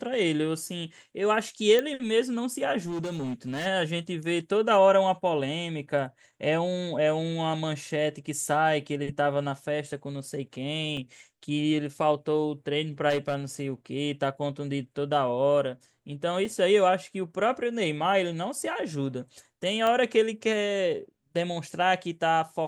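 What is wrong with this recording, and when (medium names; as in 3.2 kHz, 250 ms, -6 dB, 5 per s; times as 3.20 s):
1.79 s: pop -13 dBFS
2.78–3.67 s: clipped -28.5 dBFS
10.97 s: dropout 3.2 ms
13.09–13.35 s: clipped -22.5 dBFS
16.45 s: dropout 3 ms
19.87 s: pop -15 dBFS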